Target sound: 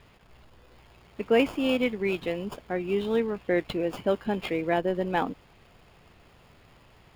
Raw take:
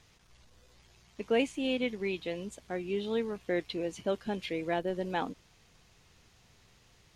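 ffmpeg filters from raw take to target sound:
-filter_complex "[0:a]highshelf=f=5.2k:g=6,acrossover=split=3400[a][b];[b]acrusher=samples=22:mix=1:aa=0.000001[c];[a][c]amix=inputs=2:normalize=0,volume=6dB"

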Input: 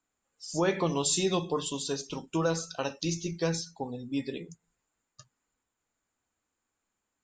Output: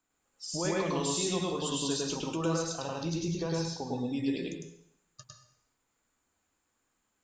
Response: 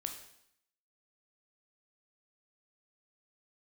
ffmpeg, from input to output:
-filter_complex "[0:a]asettb=1/sr,asplit=3[a][b][c];[a]atrim=end=2.624[d];[b]atrim=start=2.62:end=3.77,asetpts=PTS-STARTPTS,afade=t=in:d=0.004:c=qsin,afade=t=out:st=1.146:d=0.004:c=qsin,equalizer=f=125:t=o:w=1:g=6,equalizer=f=1k:t=o:w=1:g=5,equalizer=f=2k:t=o:w=1:g=-5,equalizer=f=8k:t=o:w=1:g=-9[e];[c]atrim=start=3.766[f];[d][e]acrossfade=d=0.004:c1=hsin:c2=qsin[g];[g][f]acrossfade=d=0.004:c1=qsin:c2=hsin,alimiter=level_in=3dB:limit=-24dB:level=0:latency=1:release=140,volume=-3dB,asplit=2[h][i];[1:a]atrim=start_sample=2205,adelay=104[j];[i][j]afir=irnorm=-1:irlink=0,volume=2.5dB[k];[h][k]amix=inputs=2:normalize=0,volume=1.5dB"

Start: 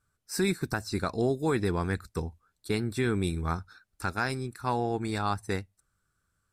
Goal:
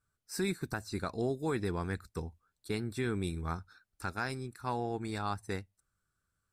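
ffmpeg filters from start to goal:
-filter_complex "[0:a]asettb=1/sr,asplit=3[a][b][c];[a]atrim=end=0.474[d];[b]atrim=start=0.47:end=1.17,asetpts=PTS-STARTPTS,afade=t=in:d=0.004:c=qsin,afade=t=out:st=0.696:d=0.004:c=qsin,bandreject=f=5.3k:w=13[e];[c]atrim=start=1.166[f];[d][e]acrossfade=d=0.004:c1=hsin:c2=qsin[g];[g][f]acrossfade=d=0.004:c1=qsin:c2=hsin,volume=-6dB"

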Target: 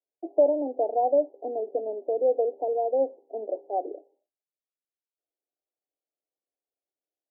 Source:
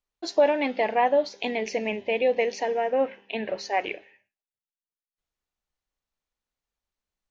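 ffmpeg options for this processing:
-af "asuperpass=centerf=460:order=12:qfactor=0.94"

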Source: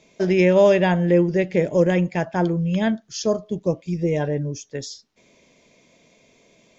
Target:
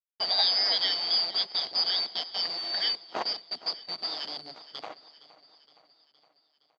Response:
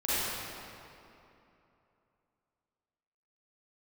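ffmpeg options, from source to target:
-af "afftfilt=real='real(if(lt(b,272),68*(eq(floor(b/68),0)*3+eq(floor(b/68),1)*2+eq(floor(b/68),2)*1+eq(floor(b/68),3)*0)+mod(b,68),b),0)':imag='imag(if(lt(b,272),68*(eq(floor(b/68),0)*3+eq(floor(b/68),1)*2+eq(floor(b/68),2)*1+eq(floor(b/68),3)*0)+mod(b,68),b),0)':win_size=2048:overlap=0.75,aemphasis=mode=reproduction:type=50fm,bandreject=f=50:t=h:w=6,bandreject=f=100:t=h:w=6,bandreject=f=150:t=h:w=6,bandreject=f=200:t=h:w=6,bandreject=f=250:t=h:w=6,bandreject=f=300:t=h:w=6,bandreject=f=350:t=h:w=6,bandreject=f=400:t=h:w=6,bandreject=f=450:t=h:w=6,bandreject=f=500:t=h:w=6,aecho=1:1:6.3:0.33,aeval=exprs='sgn(val(0))*max(abs(val(0))-0.0133,0)':c=same,acrusher=bits=6:dc=4:mix=0:aa=0.000001,highpass=280,equalizer=f=710:t=q:w=4:g=8,equalizer=f=1.7k:t=q:w=4:g=-5,equalizer=f=2.6k:t=q:w=4:g=-6,lowpass=f=3.7k:w=0.5412,lowpass=f=3.7k:w=1.3066,aecho=1:1:466|932|1398|1864|2330:0.126|0.0743|0.0438|0.0259|0.0153,volume=4.5dB"

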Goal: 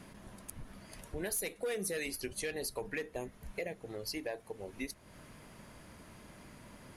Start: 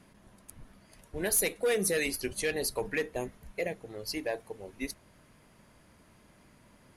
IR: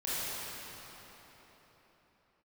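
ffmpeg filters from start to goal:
-af "acompressor=threshold=-48dB:ratio=2.5,volume=6dB"

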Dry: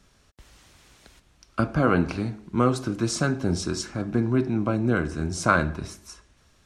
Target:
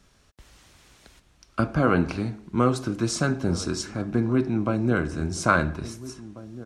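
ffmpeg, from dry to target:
-filter_complex "[0:a]asplit=2[a][b];[b]adelay=1691,volume=-16dB,highshelf=f=4k:g=-38[c];[a][c]amix=inputs=2:normalize=0"

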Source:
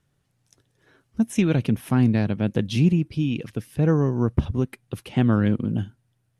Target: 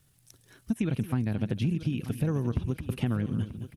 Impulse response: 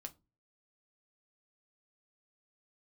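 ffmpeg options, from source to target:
-filter_complex "[0:a]equalizer=f=6.4k:w=2:g=-2.5,crystalizer=i=5:c=0,lowshelf=f=180:g=8,asplit=2[a][b];[b]aecho=0:1:376:0.133[c];[a][c]amix=inputs=2:normalize=0,acrossover=split=2600[d][e];[e]acompressor=threshold=-41dB:ratio=4:attack=1:release=60[f];[d][f]amix=inputs=2:normalize=0,atempo=1.7,acompressor=threshold=-24dB:ratio=6,asplit=2[g][h];[h]aecho=0:1:936|1872|2808:0.2|0.0698|0.0244[i];[g][i]amix=inputs=2:normalize=0,volume=-1.5dB"

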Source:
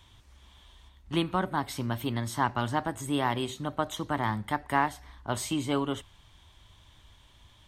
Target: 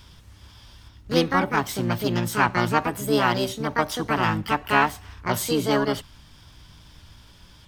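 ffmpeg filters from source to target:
-filter_complex "[0:a]asplit=2[a][b];[b]asetrate=66075,aresample=44100,atempo=0.66742,volume=-1dB[c];[a][c]amix=inputs=2:normalize=0,aeval=exprs='val(0)+0.00112*(sin(2*PI*60*n/s)+sin(2*PI*2*60*n/s)/2+sin(2*PI*3*60*n/s)/3+sin(2*PI*4*60*n/s)/4+sin(2*PI*5*60*n/s)/5)':c=same,volume=4.5dB"

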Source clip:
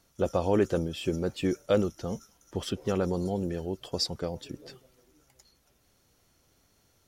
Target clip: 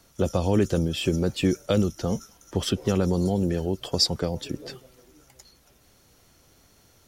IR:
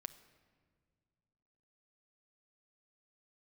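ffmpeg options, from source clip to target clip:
-filter_complex "[0:a]acrossover=split=240|3000[a][b][c];[b]acompressor=threshold=-35dB:ratio=3[d];[a][d][c]amix=inputs=3:normalize=0,volume=8.5dB"

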